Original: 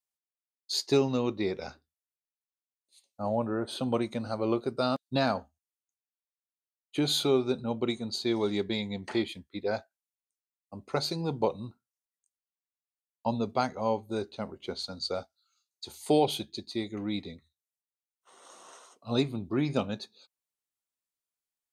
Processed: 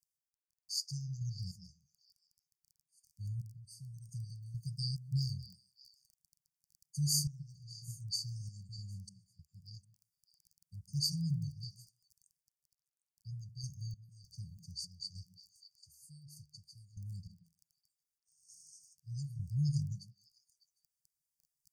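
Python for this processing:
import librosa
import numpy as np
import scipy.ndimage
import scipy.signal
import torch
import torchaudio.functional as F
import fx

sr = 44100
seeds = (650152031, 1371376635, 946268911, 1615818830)

p1 = fx.comb_fb(x, sr, f0_hz=260.0, decay_s=0.63, harmonics='odd', damping=0.0, mix_pct=70, at=(3.41, 4.09))
p2 = fx.dmg_crackle(p1, sr, seeds[0], per_s=15.0, level_db=-44.0)
p3 = fx.tremolo_random(p2, sr, seeds[1], hz=3.3, depth_pct=95)
p4 = fx.brickwall_bandstop(p3, sr, low_hz=170.0, high_hz=4500.0)
p5 = p4 + fx.echo_stepped(p4, sr, ms=151, hz=200.0, octaves=1.4, feedback_pct=70, wet_db=-6, dry=0)
y = p5 * librosa.db_to_amplitude(4.5)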